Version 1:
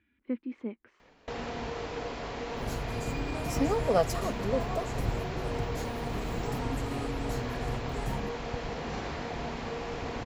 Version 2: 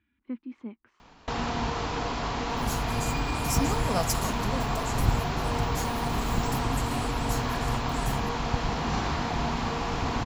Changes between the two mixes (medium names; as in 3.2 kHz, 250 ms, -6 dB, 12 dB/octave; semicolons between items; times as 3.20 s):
first sound +9.5 dB; second sound: add tone controls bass +4 dB, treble +12 dB; master: add graphic EQ 500/1000/2000 Hz -10/+4/-5 dB